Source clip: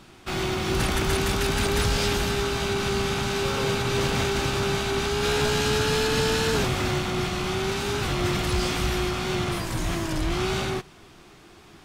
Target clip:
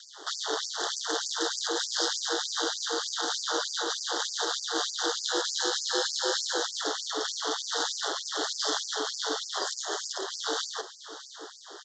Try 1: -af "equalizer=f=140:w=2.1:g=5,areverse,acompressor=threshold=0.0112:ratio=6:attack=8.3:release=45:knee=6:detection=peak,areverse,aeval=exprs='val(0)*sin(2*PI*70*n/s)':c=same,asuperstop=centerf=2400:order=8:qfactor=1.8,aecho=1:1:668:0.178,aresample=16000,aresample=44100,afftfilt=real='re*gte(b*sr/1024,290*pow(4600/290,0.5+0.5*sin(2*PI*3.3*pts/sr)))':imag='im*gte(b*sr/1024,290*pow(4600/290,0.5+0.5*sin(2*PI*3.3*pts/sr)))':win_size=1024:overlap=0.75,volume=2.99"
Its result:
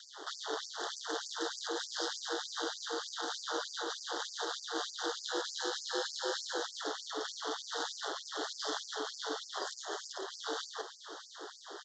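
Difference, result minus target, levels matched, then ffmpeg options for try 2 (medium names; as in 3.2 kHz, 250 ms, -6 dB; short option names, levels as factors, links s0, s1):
compression: peak gain reduction +6 dB; 8 kHz band -2.5 dB
-af "equalizer=f=140:w=2.1:g=5,areverse,acompressor=threshold=0.0251:ratio=6:attack=8.3:release=45:knee=6:detection=peak,areverse,aeval=exprs='val(0)*sin(2*PI*70*n/s)':c=same,asuperstop=centerf=2400:order=8:qfactor=1.8,highshelf=f=4600:g=8,aecho=1:1:668:0.178,aresample=16000,aresample=44100,afftfilt=real='re*gte(b*sr/1024,290*pow(4600/290,0.5+0.5*sin(2*PI*3.3*pts/sr)))':imag='im*gte(b*sr/1024,290*pow(4600/290,0.5+0.5*sin(2*PI*3.3*pts/sr)))':win_size=1024:overlap=0.75,volume=2.99"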